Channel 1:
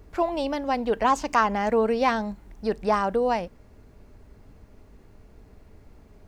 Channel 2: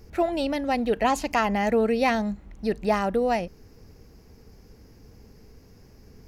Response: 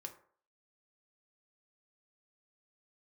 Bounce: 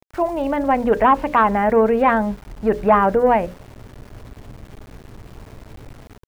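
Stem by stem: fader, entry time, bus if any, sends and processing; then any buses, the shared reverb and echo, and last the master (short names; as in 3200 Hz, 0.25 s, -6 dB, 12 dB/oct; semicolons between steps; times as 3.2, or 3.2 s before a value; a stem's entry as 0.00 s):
-5.0 dB, 0.00 s, no send, bell 120 Hz +14 dB 0.26 oct; AGC gain up to 9 dB; sine folder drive 3 dB, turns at -1.5 dBFS
-9.0 dB, 2.9 ms, no send, bell 730 Hz +13 dB 1.4 oct; auto duck -12 dB, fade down 0.25 s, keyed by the first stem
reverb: off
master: LPF 2300 Hz 24 dB/oct; notches 60/120/180/240/300/360/420/480/540/600 Hz; sample gate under -38.5 dBFS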